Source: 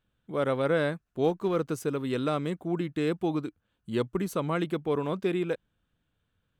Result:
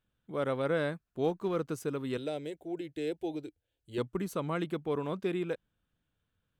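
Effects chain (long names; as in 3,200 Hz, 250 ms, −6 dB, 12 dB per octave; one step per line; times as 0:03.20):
0:02.17–0:03.98: phaser with its sweep stopped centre 480 Hz, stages 4
level −4.5 dB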